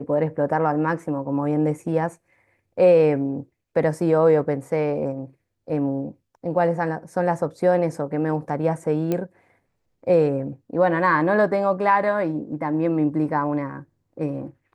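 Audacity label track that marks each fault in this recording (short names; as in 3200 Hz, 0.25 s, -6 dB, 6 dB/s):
9.120000	9.120000	pop -12 dBFS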